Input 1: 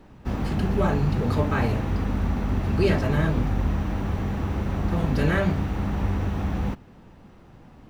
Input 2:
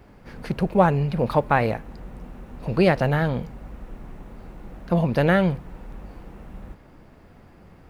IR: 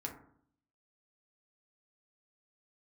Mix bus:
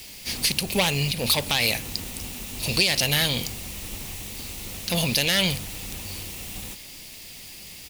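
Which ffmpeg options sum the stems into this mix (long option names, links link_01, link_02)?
-filter_complex "[0:a]asoftclip=type=tanh:threshold=-24dB,volume=-9dB[link_01];[1:a]highshelf=frequency=3200:gain=11.5,asoftclip=type=tanh:threshold=-13.5dB,aexciter=amount=10.8:drive=6.2:freq=2200,adelay=0.4,volume=-3dB,asplit=2[link_02][link_03];[link_03]apad=whole_len=348180[link_04];[link_01][link_04]sidechaingate=range=-33dB:threshold=-35dB:ratio=16:detection=peak[link_05];[link_05][link_02]amix=inputs=2:normalize=0,alimiter=limit=-8.5dB:level=0:latency=1:release=181"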